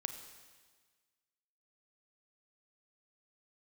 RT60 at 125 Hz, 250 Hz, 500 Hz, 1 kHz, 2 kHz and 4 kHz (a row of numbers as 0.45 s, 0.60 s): 1.5 s, 1.5 s, 1.5 s, 1.5 s, 1.5 s, 1.5 s